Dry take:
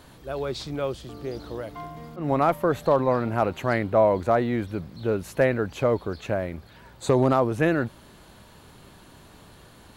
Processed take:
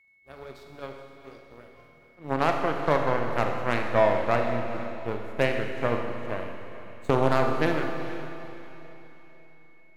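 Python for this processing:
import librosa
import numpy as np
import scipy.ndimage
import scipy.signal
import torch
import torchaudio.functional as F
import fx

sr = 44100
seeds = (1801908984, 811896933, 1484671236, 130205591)

p1 = fx.power_curve(x, sr, exponent=2.0)
p2 = p1 + 10.0 ** (-60.0 / 20.0) * np.sin(2.0 * np.pi * 2200.0 * np.arange(len(p1)) / sr)
p3 = p2 + fx.echo_diffused(p2, sr, ms=450, feedback_pct=41, wet_db=-11.5, dry=0)
y = fx.rev_schroeder(p3, sr, rt60_s=1.8, comb_ms=26, drr_db=3.5)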